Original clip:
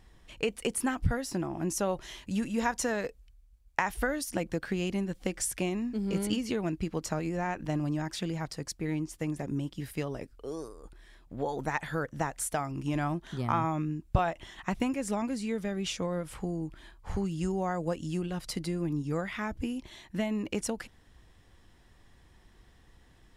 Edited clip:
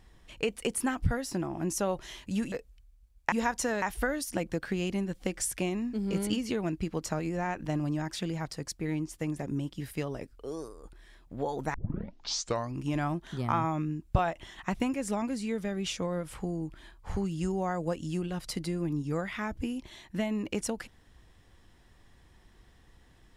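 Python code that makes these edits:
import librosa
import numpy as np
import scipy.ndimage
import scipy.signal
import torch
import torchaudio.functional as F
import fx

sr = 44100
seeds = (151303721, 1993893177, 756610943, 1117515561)

y = fx.edit(x, sr, fx.move(start_s=2.52, length_s=0.5, to_s=3.82),
    fx.tape_start(start_s=11.74, length_s=1.04), tone=tone)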